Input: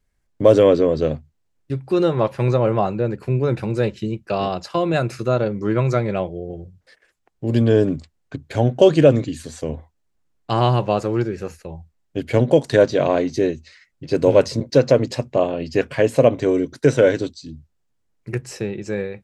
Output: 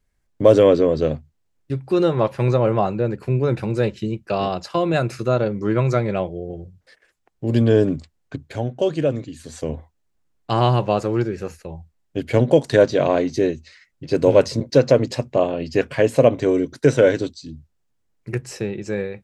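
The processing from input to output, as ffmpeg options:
ffmpeg -i in.wav -filter_complex "[0:a]asplit=3[link_01][link_02][link_03];[link_01]atrim=end=8.7,asetpts=PTS-STARTPTS,afade=type=out:start_time=8.42:duration=0.28:curve=qua:silence=0.398107[link_04];[link_02]atrim=start=8.7:end=9.28,asetpts=PTS-STARTPTS,volume=-8dB[link_05];[link_03]atrim=start=9.28,asetpts=PTS-STARTPTS,afade=type=in:duration=0.28:curve=qua:silence=0.398107[link_06];[link_04][link_05][link_06]concat=n=3:v=0:a=1" out.wav

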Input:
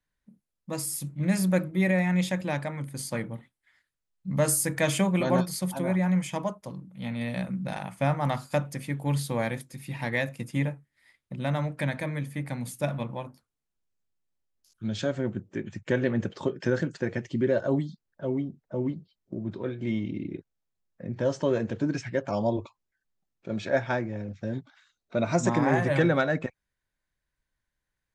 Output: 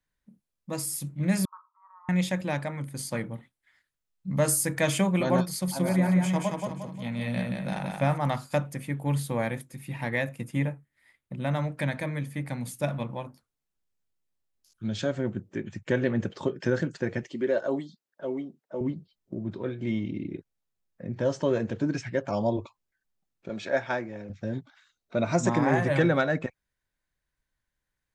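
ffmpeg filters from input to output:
ffmpeg -i in.wav -filter_complex "[0:a]asettb=1/sr,asplit=3[link_01][link_02][link_03];[link_01]atrim=end=1.454[link_04];[link_02]atrim=start=1.45:end=2.09,asetpts=PTS-STARTPTS,afade=type=in:duration=0.004:curve=qsin,afade=type=out:start_time=0.636:duration=0.004:curve=qsin,asuperpass=centerf=1100:order=8:qfactor=3.3[link_05];[link_03]atrim=start=2.086[link_06];[link_04][link_05]acrossfade=duration=0.004:curve1=hsin:curve2=qsin[link_07];[link_07][link_06]acrossfade=duration=0.004:curve1=qsin:curve2=hsin,asettb=1/sr,asplit=3[link_08][link_09][link_10];[link_08]atrim=end=5.504[link_11];[link_09]atrim=start=5.5:end=8.18,asetpts=PTS-STARTPTS,afade=type=in:duration=0.004:curve=qsin,afade=type=out:start_time=2.676:duration=0.004:curve=qsin,aecho=1:1:177|354|531|708|885:0.668|0.267|0.107|0.0428|0.0171,atrim=end_sample=118188[link_12];[link_10]atrim=start=8.176[link_13];[link_11][link_12]acrossfade=duration=0.004:curve1=hsin:curve2=qsin[link_14];[link_14][link_13]acrossfade=duration=0.004:curve1=qsin:curve2=hsin,asettb=1/sr,asplit=3[link_15][link_16][link_17];[link_15]atrim=end=8.714[link_18];[link_16]atrim=start=8.71:end=11.51,asetpts=PTS-STARTPTS,afade=type=in:duration=0.004:curve=qsin,afade=type=out:start_time=2.796:duration=0.004:curve=qsin,equalizer=frequency=4900:width_type=o:width=1:gain=-6[link_19];[link_17]atrim=start=11.506[link_20];[link_18][link_19]acrossfade=duration=0.004:curve1=hsin:curve2=qsin[link_21];[link_21][link_20]acrossfade=duration=0.004:curve1=qsin:curve2=hsin,asettb=1/sr,asplit=3[link_22][link_23][link_24];[link_22]atrim=end=17.234[link_25];[link_23]atrim=start=17.23:end=18.81,asetpts=PTS-STARTPTS,afade=type=in:duration=0.004:curve=qsin,afade=type=out:start_time=1.576:duration=0.004:curve=qsin,highpass=310[link_26];[link_24]atrim=start=18.806[link_27];[link_25][link_26]acrossfade=duration=0.004:curve1=hsin:curve2=qsin[link_28];[link_28][link_27]acrossfade=duration=0.004:curve1=qsin:curve2=hsin,asettb=1/sr,asplit=3[link_29][link_30][link_31];[link_29]atrim=end=23.494[link_32];[link_30]atrim=start=23.49:end=24.3,asetpts=PTS-STARTPTS,afade=type=in:duration=0.004:curve=qsin,afade=type=out:start_time=0.806:duration=0.004:curve=qsin,highpass=frequency=330:poles=1[link_33];[link_31]atrim=start=24.296[link_34];[link_32][link_33]acrossfade=duration=0.004:curve1=hsin:curve2=qsin[link_35];[link_35][link_34]acrossfade=duration=0.004:curve1=qsin:curve2=hsin" out.wav

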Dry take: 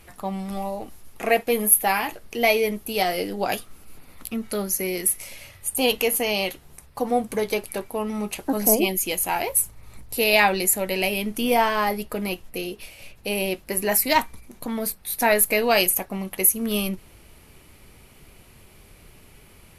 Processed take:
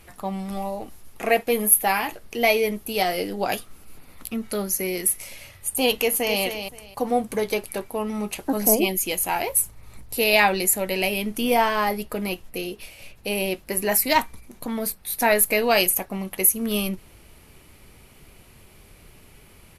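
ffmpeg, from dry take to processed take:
ffmpeg -i in.wav -filter_complex "[0:a]asplit=2[link_01][link_02];[link_02]afade=type=in:start_time=5.99:duration=0.01,afade=type=out:start_time=6.42:duration=0.01,aecho=0:1:260|520|780:0.398107|0.0796214|0.0159243[link_03];[link_01][link_03]amix=inputs=2:normalize=0" out.wav

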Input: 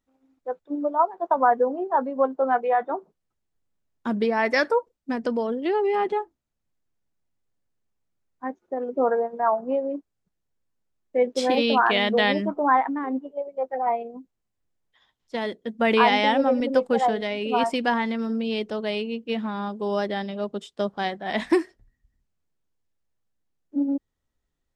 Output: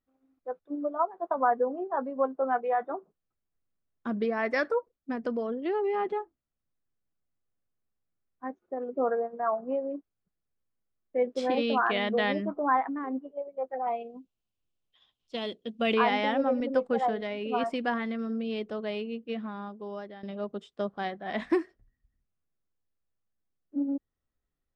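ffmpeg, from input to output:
ffmpeg -i in.wav -filter_complex "[0:a]asettb=1/sr,asplit=3[link_01][link_02][link_03];[link_01]atrim=end=13.874[link_04];[link_02]atrim=start=13.87:end=15.94,asetpts=PTS-STARTPTS,afade=type=in:duration=0.004:curve=qsin,afade=type=out:start_time=2.066:duration=0.004:curve=qsin,highshelf=frequency=2300:width_type=q:width=3:gain=6.5[link_05];[link_03]atrim=start=15.936[link_06];[link_04][link_05]acrossfade=duration=0.004:curve1=hsin:curve2=qsin[link_07];[link_07][link_06]acrossfade=duration=0.004:curve1=qsin:curve2=hsin,asplit=2[link_08][link_09];[link_08]atrim=end=20.23,asetpts=PTS-STARTPTS,afade=type=out:start_time=19.17:duration=1.06:silence=0.199526[link_10];[link_09]atrim=start=20.23,asetpts=PTS-STARTPTS,afade=type=in:duration=0.004:curve=hsin:silence=0.199526[link_11];[link_10][link_11]concat=n=2:v=0:a=1,lowpass=frequency=2400:poles=1,equalizer=frequency=1200:width_type=o:width=0.77:gain=2.5,bandreject=frequency=910:width=8,volume=-5.5dB" out.wav

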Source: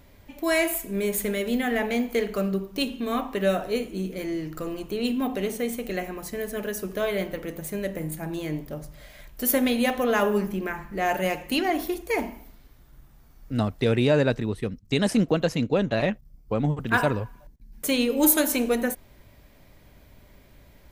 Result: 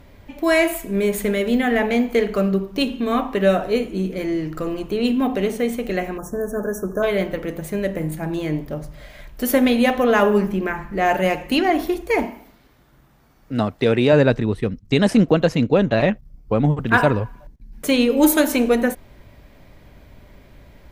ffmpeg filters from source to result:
ffmpeg -i in.wav -filter_complex "[0:a]asplit=3[link_01][link_02][link_03];[link_01]afade=type=out:start_time=6.17:duration=0.02[link_04];[link_02]asuperstop=centerf=3100:order=20:qfactor=0.79,afade=type=in:start_time=6.17:duration=0.02,afade=type=out:start_time=7.02:duration=0.02[link_05];[link_03]afade=type=in:start_time=7.02:duration=0.02[link_06];[link_04][link_05][link_06]amix=inputs=3:normalize=0,asettb=1/sr,asplit=3[link_07][link_08][link_09];[link_07]atrim=end=12.254[link_10];[link_08]atrim=start=12.25:end=14.13,asetpts=PTS-STARTPTS,afade=type=in:duration=0.004:curve=qsin,afade=type=out:start_time=1.876:duration=0.004:curve=qsin,highpass=frequency=210:poles=1[link_11];[link_09]atrim=start=14.126[link_12];[link_10][link_11]acrossfade=duration=0.004:curve1=hsin:curve2=qsin[link_13];[link_13][link_12]acrossfade=duration=0.004:curve1=qsin:curve2=hsin,aemphasis=mode=reproduction:type=cd,volume=6.5dB" out.wav

